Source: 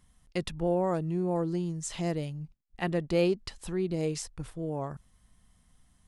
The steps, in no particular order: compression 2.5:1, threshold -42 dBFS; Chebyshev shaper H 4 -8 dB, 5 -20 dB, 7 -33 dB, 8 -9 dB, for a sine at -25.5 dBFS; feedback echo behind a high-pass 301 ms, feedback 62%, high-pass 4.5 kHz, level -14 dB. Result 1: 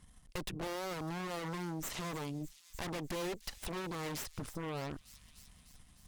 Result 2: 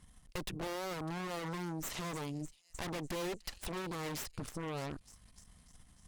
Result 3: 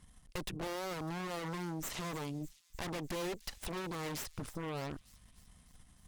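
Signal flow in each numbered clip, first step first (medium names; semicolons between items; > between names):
Chebyshev shaper > feedback echo behind a high-pass > compression; feedback echo behind a high-pass > Chebyshev shaper > compression; Chebyshev shaper > compression > feedback echo behind a high-pass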